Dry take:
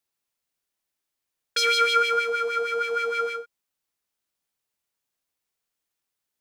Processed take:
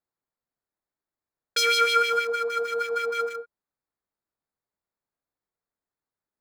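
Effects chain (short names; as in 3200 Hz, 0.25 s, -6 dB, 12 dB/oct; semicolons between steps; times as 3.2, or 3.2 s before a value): Wiener smoothing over 15 samples; high shelf 12000 Hz +11.5 dB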